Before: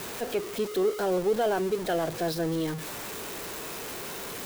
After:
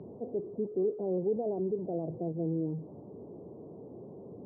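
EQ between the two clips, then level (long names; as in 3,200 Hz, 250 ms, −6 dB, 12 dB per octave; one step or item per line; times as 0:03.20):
Gaussian smoothing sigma 16 samples
high-pass filter 94 Hz 24 dB per octave
high-frequency loss of the air 340 metres
0.0 dB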